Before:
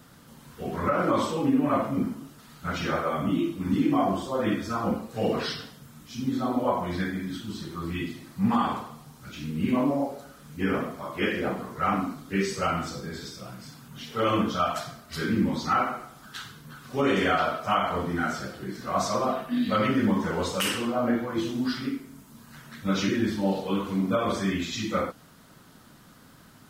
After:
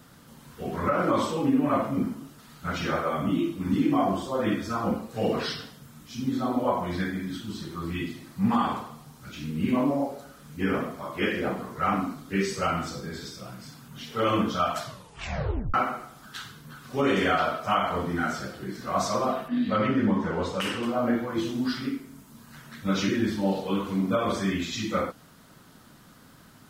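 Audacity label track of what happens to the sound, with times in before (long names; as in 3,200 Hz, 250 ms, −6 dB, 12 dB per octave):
14.830000	14.830000	tape stop 0.91 s
19.480000	20.830000	low-pass filter 2,400 Hz 6 dB per octave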